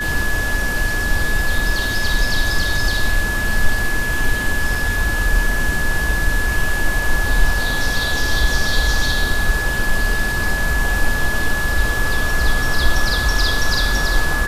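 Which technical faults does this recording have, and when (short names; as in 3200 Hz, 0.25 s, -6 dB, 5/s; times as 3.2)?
tone 1700 Hz -21 dBFS
4.75 gap 2.1 ms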